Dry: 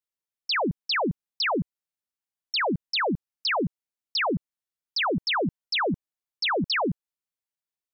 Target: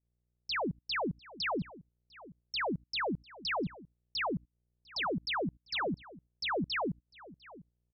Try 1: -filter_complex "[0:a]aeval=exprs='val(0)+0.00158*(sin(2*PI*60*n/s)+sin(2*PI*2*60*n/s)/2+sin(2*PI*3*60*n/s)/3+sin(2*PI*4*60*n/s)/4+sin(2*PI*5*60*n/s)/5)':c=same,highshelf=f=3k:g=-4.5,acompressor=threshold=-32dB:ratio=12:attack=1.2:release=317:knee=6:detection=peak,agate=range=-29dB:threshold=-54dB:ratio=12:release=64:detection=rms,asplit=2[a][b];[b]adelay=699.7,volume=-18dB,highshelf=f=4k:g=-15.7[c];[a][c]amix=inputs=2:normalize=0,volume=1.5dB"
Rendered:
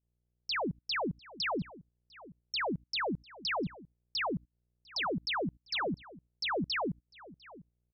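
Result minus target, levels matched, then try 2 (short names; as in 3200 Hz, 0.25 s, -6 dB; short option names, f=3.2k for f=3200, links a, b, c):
8000 Hz band +4.5 dB
-filter_complex "[0:a]aeval=exprs='val(0)+0.00158*(sin(2*PI*60*n/s)+sin(2*PI*2*60*n/s)/2+sin(2*PI*3*60*n/s)/3+sin(2*PI*4*60*n/s)/4+sin(2*PI*5*60*n/s)/5)':c=same,highshelf=f=3k:g=-13,acompressor=threshold=-32dB:ratio=12:attack=1.2:release=317:knee=6:detection=peak,agate=range=-29dB:threshold=-54dB:ratio=12:release=64:detection=rms,asplit=2[a][b];[b]adelay=699.7,volume=-18dB,highshelf=f=4k:g=-15.7[c];[a][c]amix=inputs=2:normalize=0,volume=1.5dB"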